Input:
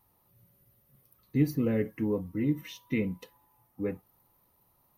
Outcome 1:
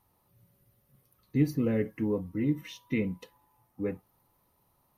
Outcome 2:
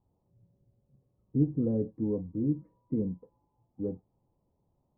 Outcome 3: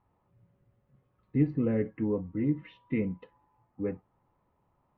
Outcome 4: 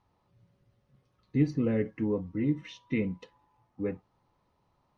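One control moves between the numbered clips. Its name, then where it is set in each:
Bessel low-pass filter, frequency: 12,000, 520, 1,800, 4,400 Hertz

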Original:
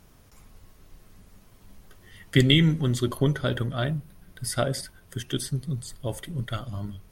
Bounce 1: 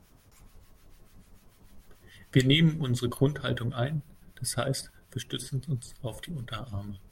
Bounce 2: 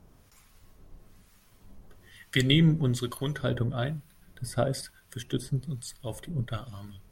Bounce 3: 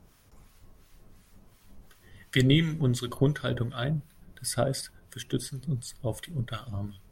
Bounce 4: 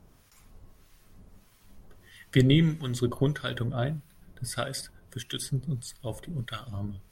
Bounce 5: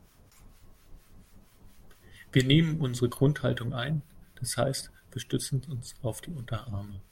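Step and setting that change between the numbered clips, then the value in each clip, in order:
two-band tremolo in antiphase, speed: 6.8, 1.1, 2.8, 1.6, 4.3 Hertz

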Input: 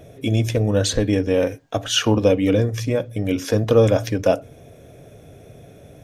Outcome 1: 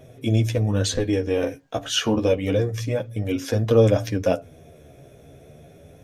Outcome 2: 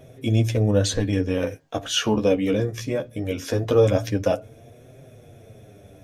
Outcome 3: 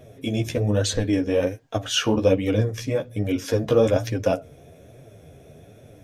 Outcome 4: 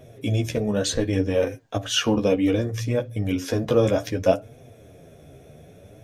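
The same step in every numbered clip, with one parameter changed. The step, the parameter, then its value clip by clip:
flanger, speed: 0.29, 0.2, 1.2, 0.65 Hertz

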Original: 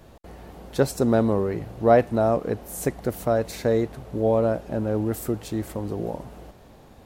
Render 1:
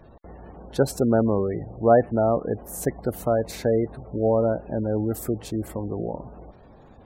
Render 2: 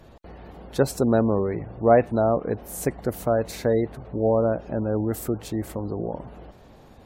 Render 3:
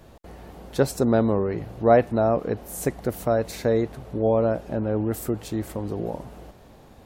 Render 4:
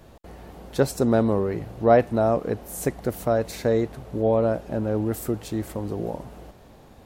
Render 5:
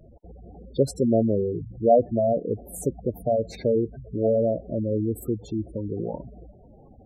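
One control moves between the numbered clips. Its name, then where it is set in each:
gate on every frequency bin, under each frame's peak: −25, −35, −50, −60, −10 decibels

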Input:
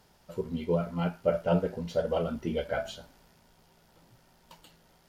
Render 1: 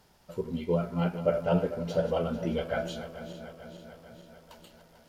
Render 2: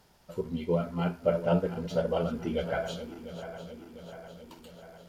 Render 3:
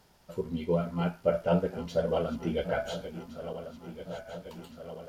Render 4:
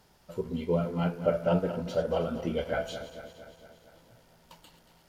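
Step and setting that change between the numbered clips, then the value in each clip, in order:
feedback delay that plays each chunk backwards, delay time: 222, 350, 707, 115 milliseconds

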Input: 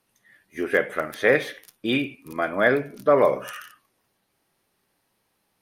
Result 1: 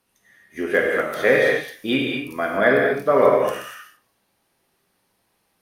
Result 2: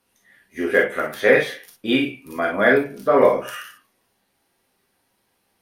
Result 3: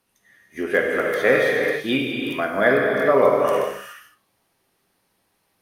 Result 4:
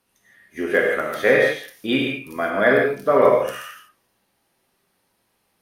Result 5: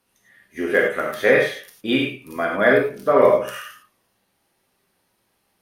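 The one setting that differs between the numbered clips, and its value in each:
reverb whose tail is shaped and stops, gate: 270, 80, 450, 190, 130 milliseconds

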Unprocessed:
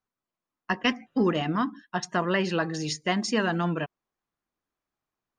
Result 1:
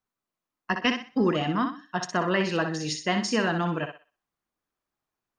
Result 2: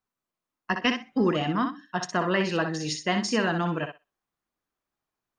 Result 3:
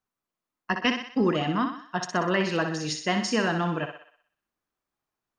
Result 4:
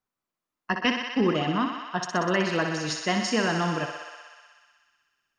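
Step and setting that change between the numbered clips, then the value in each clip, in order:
feedback echo with a high-pass in the loop, feedback: 30, 16, 52, 83%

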